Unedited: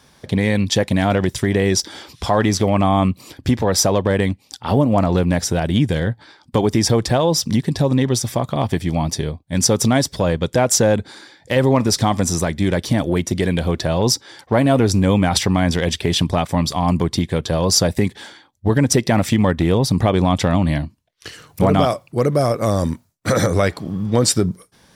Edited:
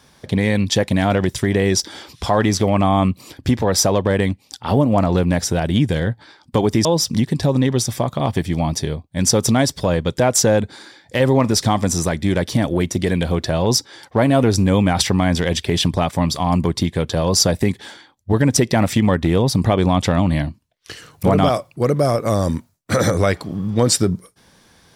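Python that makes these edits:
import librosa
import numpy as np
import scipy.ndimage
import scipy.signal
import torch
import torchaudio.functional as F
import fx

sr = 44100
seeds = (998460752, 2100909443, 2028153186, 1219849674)

y = fx.edit(x, sr, fx.cut(start_s=6.85, length_s=0.36), tone=tone)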